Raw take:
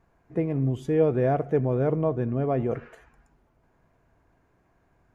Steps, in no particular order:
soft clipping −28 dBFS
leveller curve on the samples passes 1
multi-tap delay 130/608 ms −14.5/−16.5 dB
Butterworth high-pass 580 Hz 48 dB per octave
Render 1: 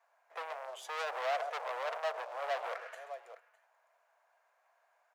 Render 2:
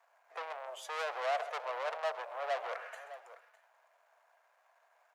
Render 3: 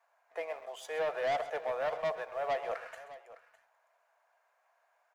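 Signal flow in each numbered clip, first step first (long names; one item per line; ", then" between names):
multi-tap delay, then leveller curve on the samples, then soft clipping, then Butterworth high-pass
soft clipping, then multi-tap delay, then leveller curve on the samples, then Butterworth high-pass
Butterworth high-pass, then leveller curve on the samples, then soft clipping, then multi-tap delay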